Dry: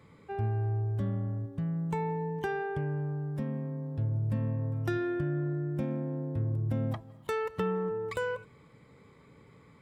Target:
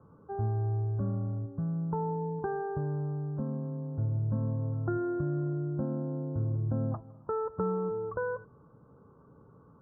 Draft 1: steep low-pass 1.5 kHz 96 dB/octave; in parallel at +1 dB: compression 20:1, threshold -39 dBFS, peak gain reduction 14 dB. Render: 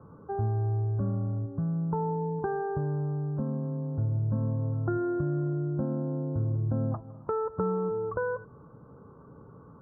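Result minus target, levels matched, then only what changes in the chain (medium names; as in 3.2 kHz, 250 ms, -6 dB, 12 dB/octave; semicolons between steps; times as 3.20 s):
compression: peak gain reduction +14 dB
remove: compression 20:1, threshold -39 dBFS, peak gain reduction 14 dB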